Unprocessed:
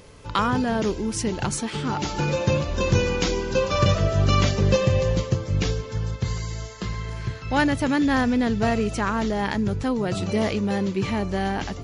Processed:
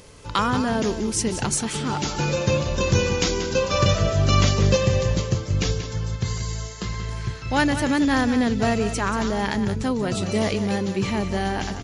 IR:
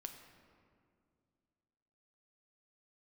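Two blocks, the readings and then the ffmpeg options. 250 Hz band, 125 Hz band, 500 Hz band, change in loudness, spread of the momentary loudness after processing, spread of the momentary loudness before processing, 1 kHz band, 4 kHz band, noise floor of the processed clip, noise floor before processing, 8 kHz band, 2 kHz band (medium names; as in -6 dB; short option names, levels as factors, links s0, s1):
+0.5 dB, +1.0 dB, +0.5 dB, +1.0 dB, 8 LU, 8 LU, +0.5 dB, +3.0 dB, -34 dBFS, -36 dBFS, +5.5 dB, +1.0 dB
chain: -filter_complex "[0:a]highshelf=f=5700:g=9,asplit=2[s0][s1];[s1]aecho=0:1:183:0.299[s2];[s0][s2]amix=inputs=2:normalize=0,aresample=22050,aresample=44100"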